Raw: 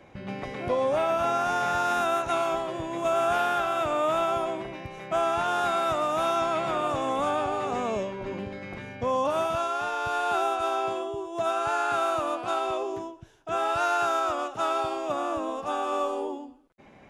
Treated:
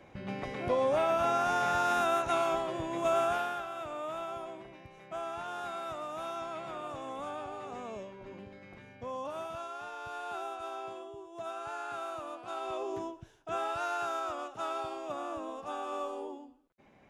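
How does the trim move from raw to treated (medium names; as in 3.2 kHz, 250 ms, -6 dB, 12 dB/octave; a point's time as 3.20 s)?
3.17 s -3 dB
3.67 s -13 dB
12.44 s -13 dB
13.10 s -1 dB
13.78 s -9 dB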